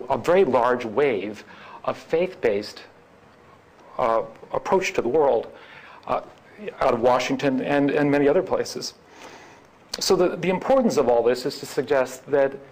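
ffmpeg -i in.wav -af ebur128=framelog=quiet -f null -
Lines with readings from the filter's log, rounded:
Integrated loudness:
  I:         -22.3 LUFS
  Threshold: -33.5 LUFS
Loudness range:
  LRA:         4.8 LU
  Threshold: -43.9 LUFS
  LRA low:   -27.4 LUFS
  LRA high:  -22.6 LUFS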